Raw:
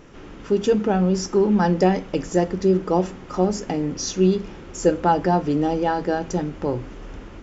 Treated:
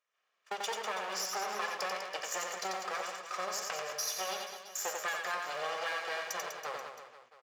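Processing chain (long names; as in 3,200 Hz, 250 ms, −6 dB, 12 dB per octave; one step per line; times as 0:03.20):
lower of the sound and its delayed copy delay 1.7 ms
high-pass filter 1,200 Hz 12 dB per octave
noise gate −43 dBFS, range −31 dB
downward compressor, threshold −34 dBFS, peak gain reduction 11.5 dB
on a send: reverse bouncing-ball delay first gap 90 ms, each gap 1.2×, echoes 5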